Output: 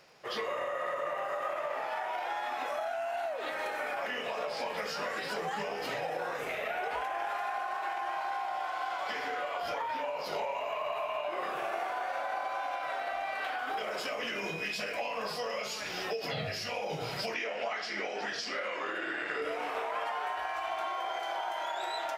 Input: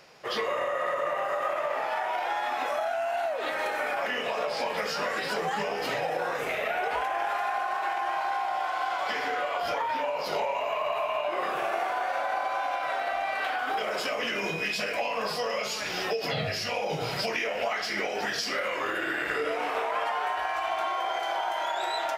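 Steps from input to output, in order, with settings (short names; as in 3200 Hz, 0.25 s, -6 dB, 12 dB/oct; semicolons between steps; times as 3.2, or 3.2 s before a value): crackle 73/s -50 dBFS; 17.34–19.42 BPF 170–6500 Hz; gain -5.5 dB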